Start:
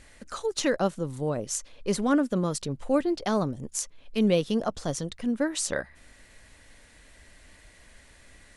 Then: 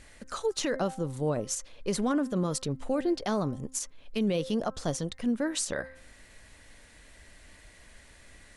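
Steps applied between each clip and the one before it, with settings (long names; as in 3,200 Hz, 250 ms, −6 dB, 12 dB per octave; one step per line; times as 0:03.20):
hum removal 261.9 Hz, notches 8
brickwall limiter −20 dBFS, peak gain reduction 8.5 dB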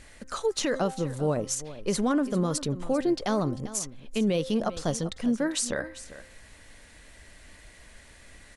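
single-tap delay 395 ms −15.5 dB
level +2.5 dB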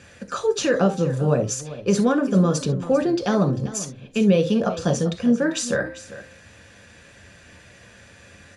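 convolution reverb, pre-delay 3 ms, DRR 4.5 dB
level −2 dB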